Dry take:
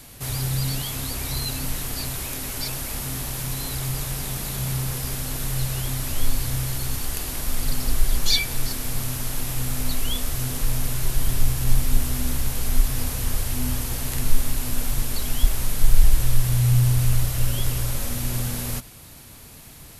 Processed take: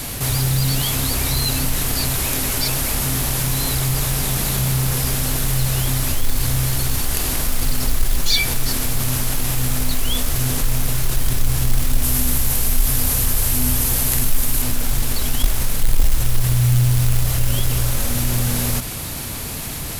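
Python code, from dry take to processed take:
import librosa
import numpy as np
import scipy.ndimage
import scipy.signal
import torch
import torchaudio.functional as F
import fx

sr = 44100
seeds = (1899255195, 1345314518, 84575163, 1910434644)

y = fx.high_shelf(x, sr, hz=8500.0, db=9.5, at=(12.03, 14.62))
y = fx.quant_float(y, sr, bits=2)
y = fx.env_flatten(y, sr, amount_pct=50)
y = y * 10.0 ** (-2.5 / 20.0)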